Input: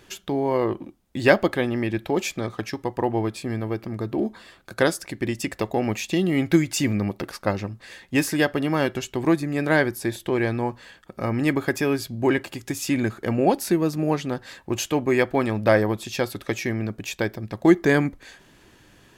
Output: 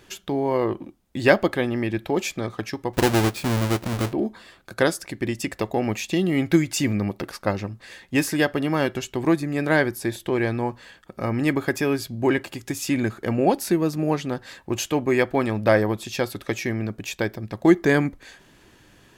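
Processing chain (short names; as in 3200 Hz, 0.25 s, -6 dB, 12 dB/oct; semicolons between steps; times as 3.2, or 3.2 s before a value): 2.93–4.13 half-waves squared off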